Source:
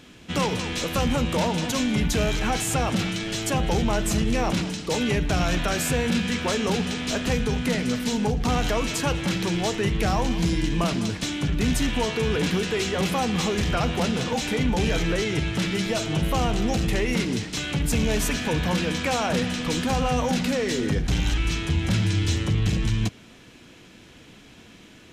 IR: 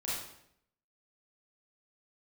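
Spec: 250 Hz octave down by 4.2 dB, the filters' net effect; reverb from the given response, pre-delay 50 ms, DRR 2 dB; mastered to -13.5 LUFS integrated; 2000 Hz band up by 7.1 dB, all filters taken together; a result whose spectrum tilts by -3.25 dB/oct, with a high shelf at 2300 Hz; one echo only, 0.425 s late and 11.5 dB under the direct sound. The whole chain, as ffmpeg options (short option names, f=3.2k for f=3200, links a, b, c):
-filter_complex "[0:a]equalizer=f=250:t=o:g=-6,equalizer=f=2k:t=o:g=6.5,highshelf=f=2.3k:g=4.5,aecho=1:1:425:0.266,asplit=2[a][b];[1:a]atrim=start_sample=2205,adelay=50[c];[b][c]afir=irnorm=-1:irlink=0,volume=-5.5dB[d];[a][d]amix=inputs=2:normalize=0,volume=7dB"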